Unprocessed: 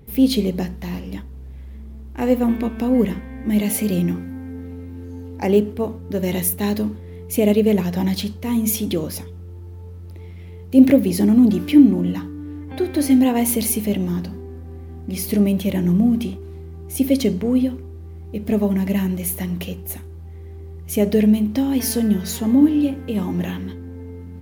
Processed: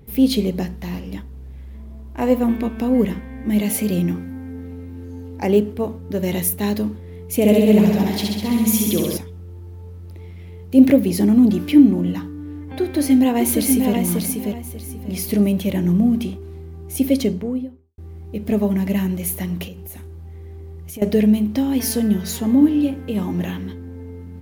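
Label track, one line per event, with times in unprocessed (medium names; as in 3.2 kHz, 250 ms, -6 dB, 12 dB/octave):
1.740000	2.410000	small resonant body resonances 650/1000 Hz, height 10 dB
7.350000	9.170000	flutter echo walls apart 11.4 m, dies away in 1.4 s
12.810000	13.940000	echo throw 590 ms, feedback 25%, level -4 dB
17.090000	17.980000	studio fade out
19.670000	21.020000	compression, threshold -31 dBFS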